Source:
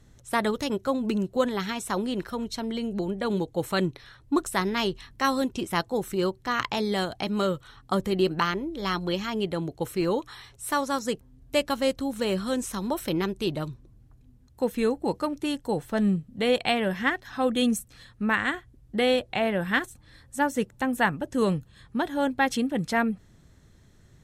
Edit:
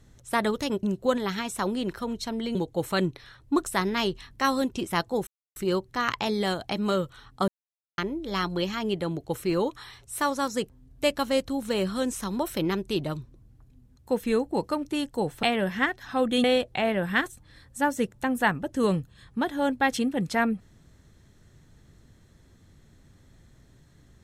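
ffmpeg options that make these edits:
ffmpeg -i in.wav -filter_complex "[0:a]asplit=8[link_01][link_02][link_03][link_04][link_05][link_06][link_07][link_08];[link_01]atrim=end=0.832[link_09];[link_02]atrim=start=1.138:end=2.862[link_10];[link_03]atrim=start=3.348:end=6.07,asetpts=PTS-STARTPTS,afade=type=out:start_time=2.718:duration=0.004:curve=hsin,apad=pad_dur=0.29[link_11];[link_04]atrim=start=6.07:end=7.99,asetpts=PTS-STARTPTS,afade=type=in:duration=0.004:curve=hsin,afade=type=out:start_time=1.916:duration=0.004:curve=hsin[link_12];[link_05]atrim=start=7.99:end=8.49,asetpts=PTS-STARTPTS,volume=0[link_13];[link_06]atrim=start=8.49:end=15.942,asetpts=PTS-STARTPTS,afade=type=in:duration=0.004:curve=hsin[link_14];[link_07]atrim=start=16.668:end=17.682[link_15];[link_08]atrim=start=19.018[link_16];[link_09][link_10]acrossfade=duration=0.004:curve1=hsin:curve2=hsin[link_17];[link_11][link_12][link_13][link_14]concat=n=4:v=0:a=1[link_18];[link_17][link_18]acrossfade=duration=0.004:curve1=hsin:curve2=hsin[link_19];[link_19][link_15]acrossfade=duration=0.004:curve1=hsin:curve2=hsin[link_20];[link_20][link_16]acrossfade=duration=0.004:curve1=hsin:curve2=hsin" out.wav

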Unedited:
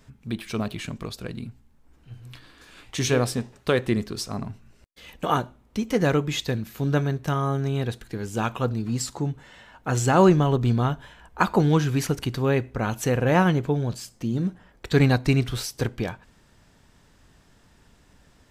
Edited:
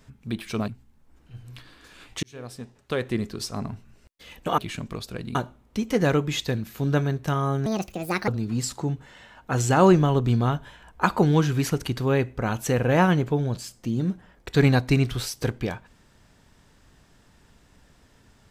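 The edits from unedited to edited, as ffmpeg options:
ffmpeg -i in.wav -filter_complex "[0:a]asplit=7[link_01][link_02][link_03][link_04][link_05][link_06][link_07];[link_01]atrim=end=0.682[link_08];[link_02]atrim=start=1.448:end=3,asetpts=PTS-STARTPTS,afade=type=out:start_time=1.548:duration=0.004:curve=hsin[link_09];[link_03]atrim=start=3:end=5.352,asetpts=PTS-STARTPTS,afade=type=in:duration=1.33[link_10];[link_04]atrim=start=0.678:end=1.452[link_11];[link_05]atrim=start=5.348:end=7.664[link_12];[link_06]atrim=start=7.66:end=8.65,asetpts=PTS-STARTPTS,asetrate=70560,aresample=44100[link_13];[link_07]atrim=start=8.646[link_14];[link_09][link_10]concat=n=2:v=0:a=1[link_15];[link_08][link_15]acrossfade=duration=0.004:curve1=hsin:curve2=hsin[link_16];[link_16][link_11]acrossfade=duration=0.004:curve1=hsin:curve2=hsin[link_17];[link_17][link_12]acrossfade=duration=0.004:curve1=hsin:curve2=hsin[link_18];[link_18][link_13]acrossfade=duration=0.004:curve1=hsin:curve2=hsin[link_19];[link_19][link_14]acrossfade=duration=0.004:curve1=hsin:curve2=hsin" out.wav

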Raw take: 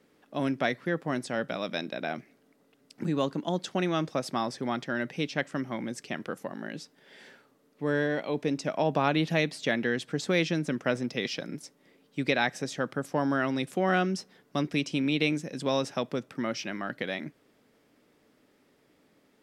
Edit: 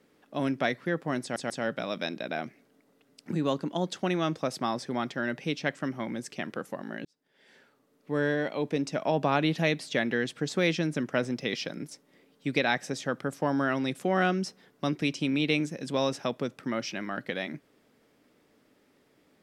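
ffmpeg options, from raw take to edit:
ffmpeg -i in.wav -filter_complex "[0:a]asplit=4[link_01][link_02][link_03][link_04];[link_01]atrim=end=1.362[link_05];[link_02]atrim=start=1.218:end=1.362[link_06];[link_03]atrim=start=1.218:end=6.77,asetpts=PTS-STARTPTS,afade=type=out:start_time=5.548:duration=0.004:curve=hsin[link_07];[link_04]atrim=start=6.77,asetpts=PTS-STARTPTS,afade=type=in:duration=1.1[link_08];[link_05][link_06]acrossfade=duration=0.004:curve1=hsin:curve2=hsin[link_09];[link_07][link_08]concat=n=2:v=0:a=1[link_10];[link_09][link_10]acrossfade=duration=0.004:curve1=hsin:curve2=hsin" out.wav

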